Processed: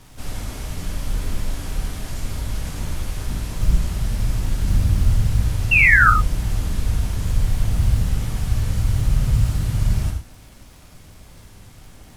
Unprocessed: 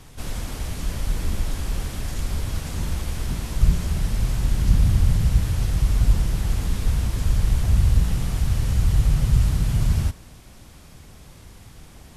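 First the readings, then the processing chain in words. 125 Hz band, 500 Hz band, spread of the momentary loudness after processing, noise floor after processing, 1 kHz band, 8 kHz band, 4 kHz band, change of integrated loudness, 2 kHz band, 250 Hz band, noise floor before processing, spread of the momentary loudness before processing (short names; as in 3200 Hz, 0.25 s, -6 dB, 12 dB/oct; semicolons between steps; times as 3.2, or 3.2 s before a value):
+0.5 dB, 0.0 dB, 15 LU, -45 dBFS, +13.0 dB, +0.5 dB, +0.5 dB, +2.5 dB, +19.5 dB, -0.5 dB, -46 dBFS, 10 LU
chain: crackle 150/s -39 dBFS; painted sound fall, 5.71–6.1, 1200–2800 Hz -13 dBFS; companded quantiser 8-bit; non-linear reverb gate 0.13 s flat, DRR 1.5 dB; gain -2 dB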